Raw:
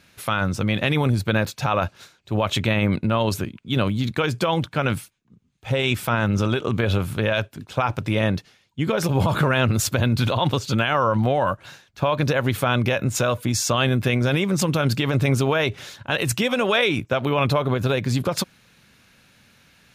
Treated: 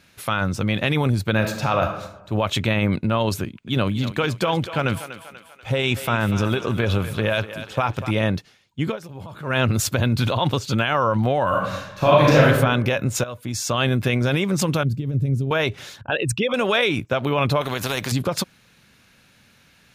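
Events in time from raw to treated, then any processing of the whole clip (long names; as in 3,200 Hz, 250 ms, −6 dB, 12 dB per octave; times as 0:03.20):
0:01.33–0:01.85: thrown reverb, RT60 0.94 s, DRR 4.5 dB
0:03.43–0:08.11: feedback echo with a high-pass in the loop 243 ms, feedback 53%, level −11 dB
0:08.86–0:09.56: duck −17 dB, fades 0.13 s
0:11.48–0:12.47: thrown reverb, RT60 0.98 s, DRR −7 dB
0:13.24–0:13.86: fade in, from −14.5 dB
0:14.83–0:15.51: drawn EQ curve 150 Hz 0 dB, 500 Hz −11 dB, 930 Hz −28 dB, 3,400 Hz −22 dB, 9,700 Hz −16 dB
0:16.01–0:16.54: spectral envelope exaggerated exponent 2
0:17.61–0:18.12: every bin compressed towards the loudest bin 2 to 1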